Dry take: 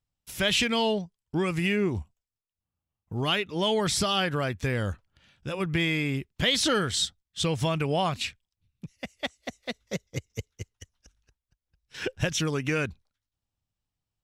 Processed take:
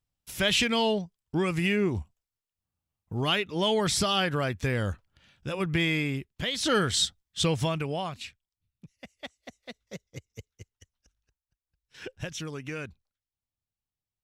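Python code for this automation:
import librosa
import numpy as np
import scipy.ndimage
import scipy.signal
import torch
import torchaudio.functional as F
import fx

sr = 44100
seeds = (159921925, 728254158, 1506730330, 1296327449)

y = fx.gain(x, sr, db=fx.line((5.98, 0.0), (6.56, -7.5), (6.75, 1.5), (7.49, 1.5), (8.18, -9.0)))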